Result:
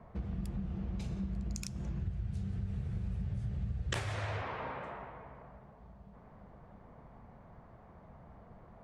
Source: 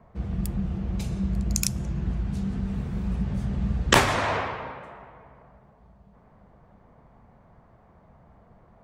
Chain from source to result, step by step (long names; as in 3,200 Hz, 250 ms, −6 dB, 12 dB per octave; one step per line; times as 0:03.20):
0:01.99–0:04.42: graphic EQ with 15 bands 100 Hz +12 dB, 250 Hz −9 dB, 1,000 Hz −6 dB, 10,000 Hz +9 dB
downward compressor 4 to 1, threshold −36 dBFS, peak gain reduction 19 dB
high-frequency loss of the air 57 metres